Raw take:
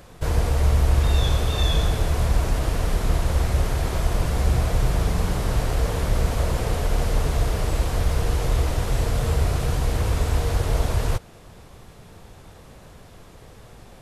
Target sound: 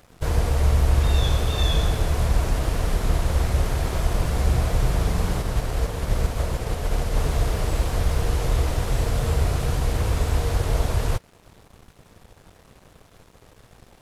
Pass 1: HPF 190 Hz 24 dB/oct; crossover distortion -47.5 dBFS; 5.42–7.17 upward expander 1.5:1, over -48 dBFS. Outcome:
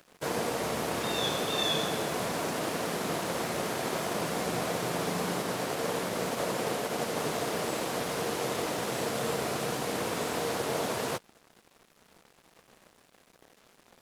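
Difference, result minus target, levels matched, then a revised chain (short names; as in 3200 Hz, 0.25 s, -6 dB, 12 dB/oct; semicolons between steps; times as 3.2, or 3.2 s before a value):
250 Hz band +4.5 dB
crossover distortion -47.5 dBFS; 5.42–7.17 upward expander 1.5:1, over -48 dBFS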